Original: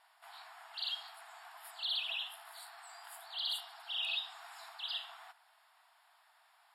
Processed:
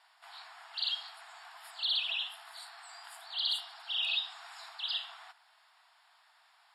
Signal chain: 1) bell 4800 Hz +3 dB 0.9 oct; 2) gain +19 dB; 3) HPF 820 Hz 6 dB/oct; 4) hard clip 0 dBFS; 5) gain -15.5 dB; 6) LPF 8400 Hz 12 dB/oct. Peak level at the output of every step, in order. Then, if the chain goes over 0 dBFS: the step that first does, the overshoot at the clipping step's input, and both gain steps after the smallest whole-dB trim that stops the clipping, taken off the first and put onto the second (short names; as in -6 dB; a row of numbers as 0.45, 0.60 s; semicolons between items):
-23.5, -4.5, -4.5, -4.5, -20.0, -20.0 dBFS; no overload